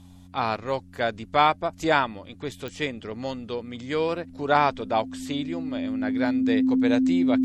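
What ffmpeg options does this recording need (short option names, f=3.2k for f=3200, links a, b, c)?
-af "adeclick=t=4,bandreject=f=90.5:t=h:w=4,bandreject=f=181:t=h:w=4,bandreject=f=271.5:t=h:w=4,bandreject=f=260:w=30"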